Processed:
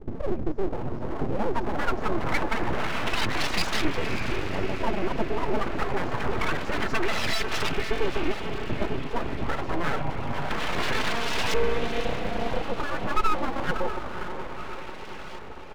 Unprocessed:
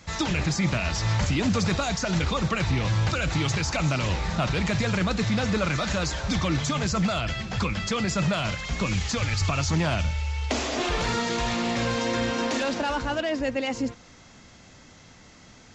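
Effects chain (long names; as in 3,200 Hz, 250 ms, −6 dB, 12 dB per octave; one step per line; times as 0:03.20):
0:02.42–0:03.05: linear delta modulator 32 kbit/s, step −42 dBFS
reverb reduction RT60 1 s
comb filter 4.6 ms, depth 87%
in parallel at 0 dB: downward compressor, threshold −34 dBFS, peak gain reduction 16 dB
on the sum: brickwall limiter −17 dBFS, peak gain reduction 7 dB
0:04.35–0:04.83: phases set to zero 95.9 Hz
auto-filter low-pass saw up 0.26 Hz 220–3,000 Hz
on a send: feedback delay with all-pass diffusion 557 ms, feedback 62%, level −8 dB
on the sum: full-wave rectification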